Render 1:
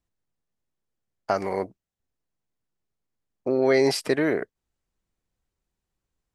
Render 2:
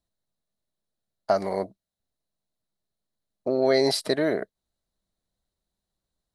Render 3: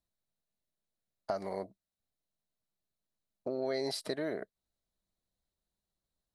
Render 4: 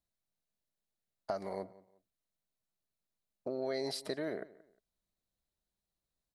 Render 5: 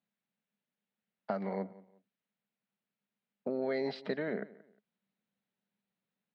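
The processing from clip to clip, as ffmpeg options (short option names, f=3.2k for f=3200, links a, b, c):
-af "equalizer=f=200:t=o:w=0.33:g=5,equalizer=f=630:t=o:w=0.33:g=9,equalizer=f=2.5k:t=o:w=0.33:g=-7,equalizer=f=4k:t=o:w=0.33:g=12,equalizer=f=10k:t=o:w=0.33:g=7,volume=-3dB"
-af "acompressor=threshold=-31dB:ratio=2,volume=-5.5dB"
-filter_complex "[0:a]asplit=2[a][b];[b]adelay=178,lowpass=f=3.1k:p=1,volume=-19.5dB,asplit=2[c][d];[d]adelay=178,lowpass=f=3.1k:p=1,volume=0.29[e];[a][c][e]amix=inputs=3:normalize=0,volume=-2dB"
-af "highpass=f=150:w=0.5412,highpass=f=150:w=1.3066,equalizer=f=210:t=q:w=4:g=8,equalizer=f=330:t=q:w=4:g=-8,equalizer=f=650:t=q:w=4:g=-6,equalizer=f=1.1k:t=q:w=4:g=-5,lowpass=f=3.1k:w=0.5412,lowpass=f=3.1k:w=1.3066,volume=5.5dB"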